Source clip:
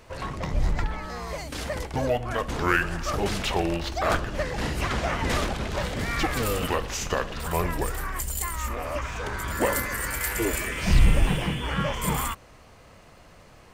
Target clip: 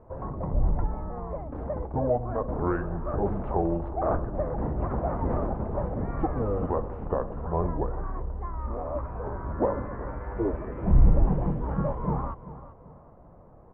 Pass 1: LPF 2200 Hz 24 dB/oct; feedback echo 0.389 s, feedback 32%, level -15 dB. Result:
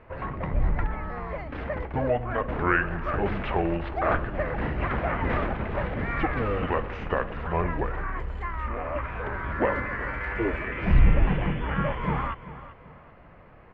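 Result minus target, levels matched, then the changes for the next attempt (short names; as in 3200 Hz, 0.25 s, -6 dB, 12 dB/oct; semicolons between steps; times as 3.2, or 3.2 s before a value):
2000 Hz band +16.0 dB
change: LPF 980 Hz 24 dB/oct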